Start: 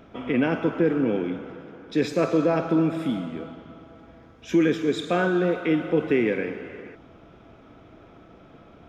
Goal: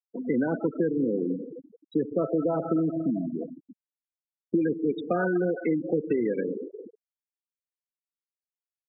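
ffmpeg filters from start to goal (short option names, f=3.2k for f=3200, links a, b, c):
-filter_complex "[0:a]acrossover=split=160|1800[a][b][c];[a]acompressor=threshold=-45dB:ratio=4[d];[b]acompressor=threshold=-26dB:ratio=4[e];[c]acompressor=threshold=-47dB:ratio=4[f];[d][e][f]amix=inputs=3:normalize=0,aemphasis=mode=production:type=50fm,afftfilt=real='re*gte(hypot(re,im),0.0631)':imag='im*gte(hypot(re,im),0.0631)':win_size=1024:overlap=0.75,volume=3dB"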